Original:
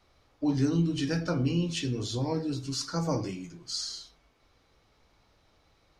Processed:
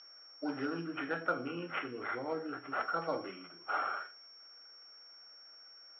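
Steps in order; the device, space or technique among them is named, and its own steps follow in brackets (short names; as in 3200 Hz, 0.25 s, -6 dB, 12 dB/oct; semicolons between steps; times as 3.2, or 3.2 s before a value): toy sound module (decimation joined by straight lines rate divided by 8×; pulse-width modulation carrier 5500 Hz; speaker cabinet 530–3600 Hz, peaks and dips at 950 Hz -6 dB, 1400 Hz +10 dB, 2100 Hz +4 dB, 3000 Hz +7 dB); 0.84–2.8 high shelf 4100 Hz -8 dB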